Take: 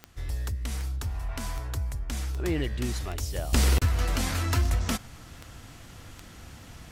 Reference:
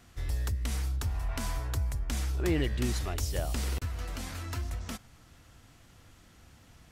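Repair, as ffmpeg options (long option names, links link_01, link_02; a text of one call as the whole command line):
ffmpeg -i in.wav -af "adeclick=threshold=4,asetnsamples=nb_out_samples=441:pad=0,asendcmd='3.53 volume volume -10.5dB',volume=0dB" out.wav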